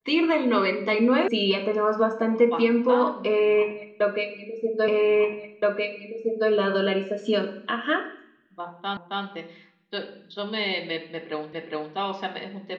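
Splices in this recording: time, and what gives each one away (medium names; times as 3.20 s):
1.28 s: sound stops dead
4.88 s: repeat of the last 1.62 s
8.97 s: repeat of the last 0.27 s
11.53 s: repeat of the last 0.41 s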